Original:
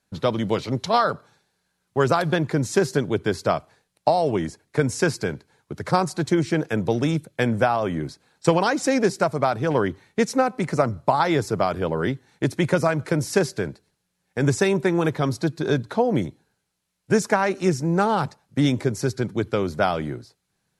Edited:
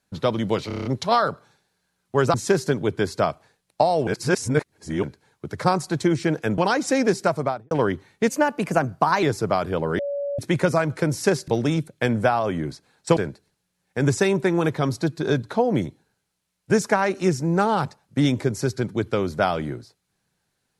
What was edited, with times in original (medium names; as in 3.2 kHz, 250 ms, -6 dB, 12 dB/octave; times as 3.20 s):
0.67 s: stutter 0.03 s, 7 plays
2.16–2.61 s: delete
4.34–5.30 s: reverse
6.85–8.54 s: move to 13.57 s
9.33–9.67 s: studio fade out
10.24–11.32 s: speed 114%
12.08–12.48 s: bleep 568 Hz -24 dBFS